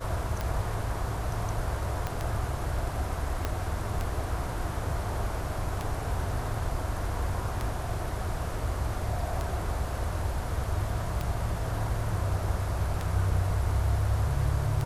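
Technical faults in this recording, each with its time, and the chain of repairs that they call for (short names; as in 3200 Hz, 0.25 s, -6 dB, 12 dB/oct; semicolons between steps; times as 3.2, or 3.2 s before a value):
tick 33 1/3 rpm -17 dBFS
2.07 pop -17 dBFS
3.45 pop -14 dBFS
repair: de-click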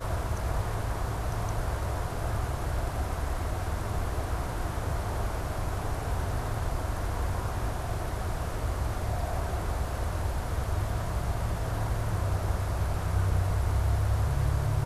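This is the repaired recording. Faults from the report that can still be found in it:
2.07 pop
3.45 pop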